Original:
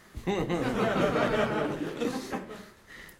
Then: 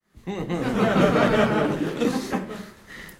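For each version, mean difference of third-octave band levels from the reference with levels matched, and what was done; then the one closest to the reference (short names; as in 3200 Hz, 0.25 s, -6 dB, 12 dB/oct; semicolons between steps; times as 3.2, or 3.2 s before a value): 2.5 dB: opening faded in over 1.01 s; bell 190 Hz +5 dB 0.7 oct; gain +6.5 dB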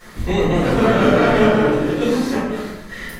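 4.0 dB: in parallel at 0 dB: compressor, threshold -40 dBFS, peak gain reduction 17.5 dB; on the sum: shoebox room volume 160 m³, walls mixed, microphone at 4.4 m; gain -3.5 dB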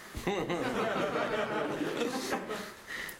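5.5 dB: low shelf 220 Hz -11 dB; compressor, threshold -38 dBFS, peak gain reduction 14 dB; gain +8.5 dB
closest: first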